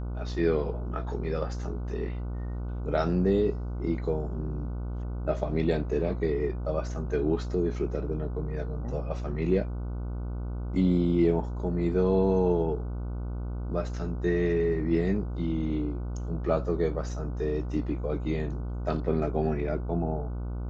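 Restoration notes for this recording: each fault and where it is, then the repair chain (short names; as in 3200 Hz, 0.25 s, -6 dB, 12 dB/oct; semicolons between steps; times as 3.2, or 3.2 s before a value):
buzz 60 Hz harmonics 25 -33 dBFS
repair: de-hum 60 Hz, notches 25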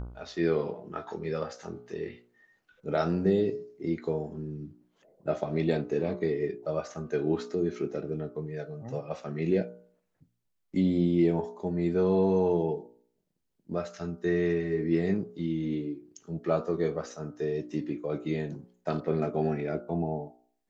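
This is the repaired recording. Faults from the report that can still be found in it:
none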